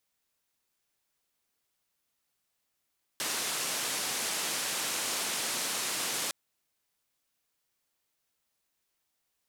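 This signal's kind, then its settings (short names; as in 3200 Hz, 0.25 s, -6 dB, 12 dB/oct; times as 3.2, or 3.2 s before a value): noise band 190–10000 Hz, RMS -33 dBFS 3.11 s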